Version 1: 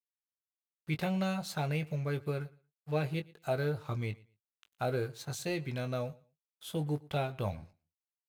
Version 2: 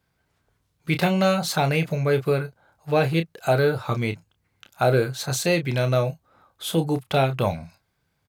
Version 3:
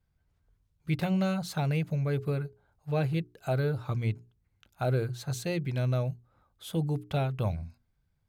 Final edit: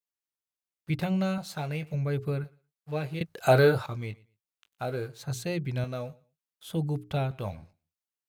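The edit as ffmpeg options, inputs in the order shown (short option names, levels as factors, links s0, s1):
-filter_complex "[2:a]asplit=4[s0][s1][s2][s3];[0:a]asplit=6[s4][s5][s6][s7][s8][s9];[s4]atrim=end=0.902[s10];[s0]atrim=start=0.898:end=1.382[s11];[s5]atrim=start=1.378:end=1.942[s12];[s1]atrim=start=1.938:end=2.442[s13];[s6]atrim=start=2.438:end=3.212[s14];[1:a]atrim=start=3.208:end=3.862[s15];[s7]atrim=start=3.858:end=5.232[s16];[s2]atrim=start=5.228:end=5.842[s17];[s8]atrim=start=5.838:end=6.702[s18];[s3]atrim=start=6.698:end=7.312[s19];[s9]atrim=start=7.308[s20];[s10][s11]acrossfade=d=0.004:c1=hsin:c2=hsin[s21];[s21][s12]acrossfade=d=0.004:c1=hsin:c2=hsin[s22];[s22][s13]acrossfade=d=0.004:c1=hsin:c2=hsin[s23];[s23][s14]acrossfade=d=0.004:c1=hsin:c2=hsin[s24];[s24][s15]acrossfade=d=0.004:c1=hsin:c2=hsin[s25];[s25][s16]acrossfade=d=0.004:c1=hsin:c2=hsin[s26];[s26][s17]acrossfade=d=0.004:c1=hsin:c2=hsin[s27];[s27][s18]acrossfade=d=0.004:c1=hsin:c2=hsin[s28];[s28][s19]acrossfade=d=0.004:c1=hsin:c2=hsin[s29];[s29][s20]acrossfade=d=0.004:c1=hsin:c2=hsin"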